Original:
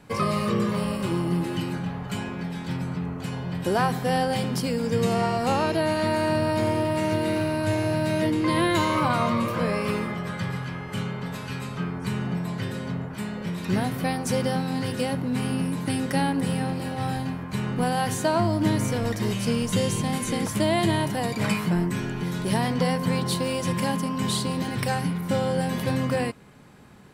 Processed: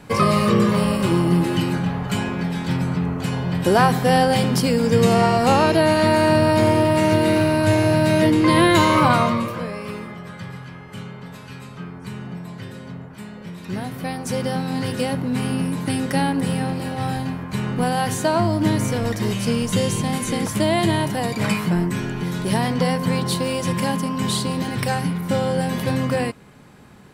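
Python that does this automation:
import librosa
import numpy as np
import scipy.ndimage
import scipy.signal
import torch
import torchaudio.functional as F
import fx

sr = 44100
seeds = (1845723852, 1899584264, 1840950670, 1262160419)

y = fx.gain(x, sr, db=fx.line((9.13, 7.5), (9.71, -4.5), (13.61, -4.5), (14.81, 3.5)))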